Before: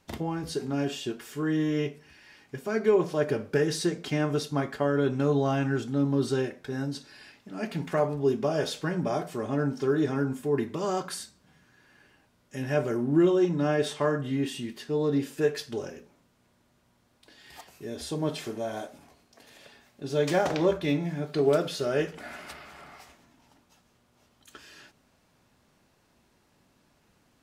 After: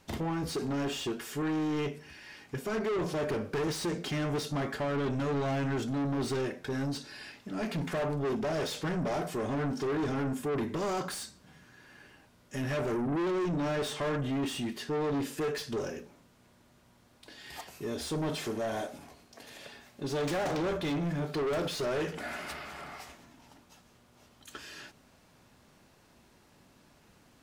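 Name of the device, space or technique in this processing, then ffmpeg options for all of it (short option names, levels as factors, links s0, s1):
saturation between pre-emphasis and de-emphasis: -af "highshelf=f=3900:g=11,asoftclip=type=tanh:threshold=0.0224,highshelf=f=3900:g=-11,volume=1.68"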